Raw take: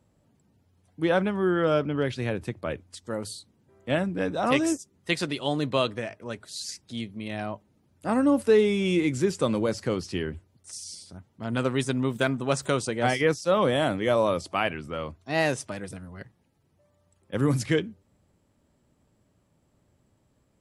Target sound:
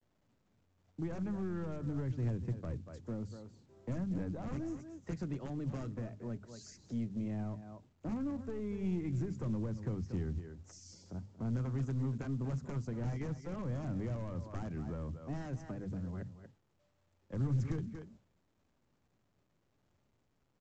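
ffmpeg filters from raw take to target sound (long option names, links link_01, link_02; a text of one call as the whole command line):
ffmpeg -i in.wav -filter_complex "[0:a]acrossover=split=120|830|1800[link_01][link_02][link_03][link_04];[link_02]acompressor=threshold=-33dB:ratio=6[link_05];[link_01][link_05][link_03][link_04]amix=inputs=4:normalize=0,bandreject=frequency=50:width_type=h:width=6,bandreject=frequency=100:width_type=h:width=6,bandreject=frequency=150:width_type=h:width=6,bandreject=frequency=200:width_type=h:width=6,bandreject=frequency=250:width_type=h:width=6,aeval=exprs='(mod(10*val(0)+1,2)-1)/10':channel_layout=same,asplit=2[link_06][link_07];[link_07]adelay=233.2,volume=-14dB,highshelf=frequency=4000:gain=-5.25[link_08];[link_06][link_08]amix=inputs=2:normalize=0,agate=range=-33dB:threshold=-54dB:ratio=3:detection=peak,firequalizer=gain_entry='entry(170,0);entry(980,-4);entry(3600,-24);entry(6300,-14)':delay=0.05:min_phase=1,aeval=exprs='(tanh(28.2*val(0)+0.25)-tanh(0.25))/28.2':channel_layout=same,acrossover=split=270[link_09][link_10];[link_10]acompressor=threshold=-53dB:ratio=5[link_11];[link_09][link_11]amix=inputs=2:normalize=0,volume=3.5dB" -ar 16000 -c:a pcm_mulaw out.wav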